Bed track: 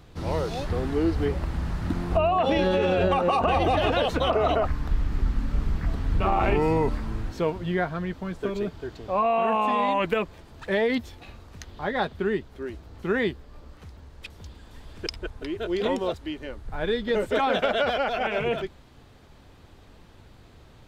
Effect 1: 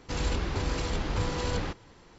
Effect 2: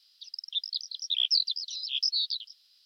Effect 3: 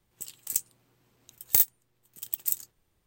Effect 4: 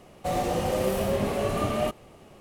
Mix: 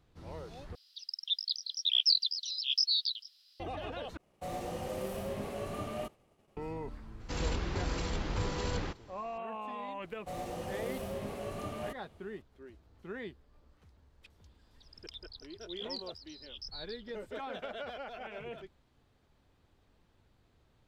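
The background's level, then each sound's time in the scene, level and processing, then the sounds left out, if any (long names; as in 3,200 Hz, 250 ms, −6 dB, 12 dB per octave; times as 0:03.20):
bed track −17.5 dB
0:00.75: overwrite with 2 −1 dB
0:04.17: overwrite with 4 −12 dB + downward expander −46 dBFS
0:07.20: mix in 1 −4.5 dB
0:10.02: mix in 4 −13 dB
0:14.59: mix in 2 −17.5 dB
not used: 3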